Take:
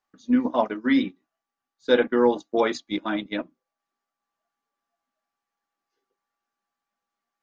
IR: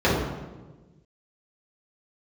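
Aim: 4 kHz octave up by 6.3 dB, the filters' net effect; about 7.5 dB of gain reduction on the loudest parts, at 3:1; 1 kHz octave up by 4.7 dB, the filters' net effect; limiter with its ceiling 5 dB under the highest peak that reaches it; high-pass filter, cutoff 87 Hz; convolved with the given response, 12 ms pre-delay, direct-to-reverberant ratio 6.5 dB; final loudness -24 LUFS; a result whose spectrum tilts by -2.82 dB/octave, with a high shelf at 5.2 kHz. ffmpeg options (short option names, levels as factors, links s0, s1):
-filter_complex "[0:a]highpass=87,equalizer=f=1000:t=o:g=5.5,equalizer=f=4000:t=o:g=8.5,highshelf=f=5200:g=-4.5,acompressor=threshold=0.0794:ratio=3,alimiter=limit=0.15:level=0:latency=1,asplit=2[s0][s1];[1:a]atrim=start_sample=2205,adelay=12[s2];[s1][s2]afir=irnorm=-1:irlink=0,volume=0.0447[s3];[s0][s3]amix=inputs=2:normalize=0,volume=1.41"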